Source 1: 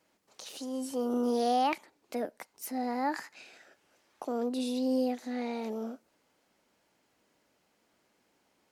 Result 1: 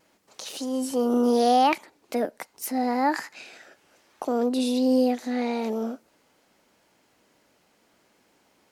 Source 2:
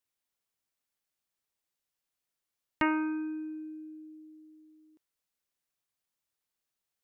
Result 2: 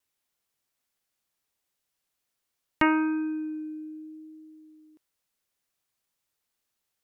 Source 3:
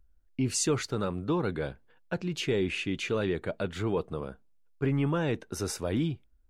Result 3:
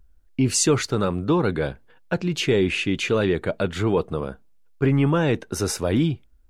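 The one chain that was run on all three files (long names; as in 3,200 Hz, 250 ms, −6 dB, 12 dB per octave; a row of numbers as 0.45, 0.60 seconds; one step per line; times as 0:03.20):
pitch vibrato 0.75 Hz 11 cents
normalise the peak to −9 dBFS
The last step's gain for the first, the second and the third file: +8.0, +5.5, +8.5 decibels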